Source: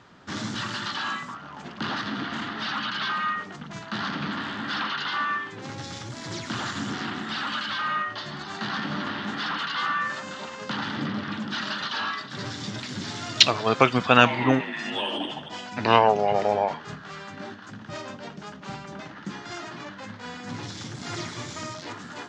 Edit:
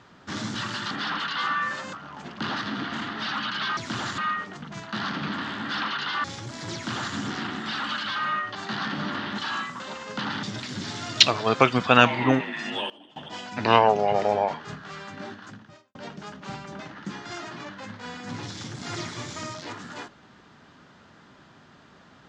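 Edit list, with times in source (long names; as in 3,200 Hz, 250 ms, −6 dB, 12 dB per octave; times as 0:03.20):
0:00.91–0:01.33: swap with 0:09.30–0:10.32
0:05.23–0:05.87: remove
0:06.37–0:06.78: duplicate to 0:03.17
0:08.18–0:08.47: remove
0:10.95–0:12.63: remove
0:14.66–0:15.80: duck −20.5 dB, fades 0.44 s logarithmic
0:17.67–0:18.15: fade out quadratic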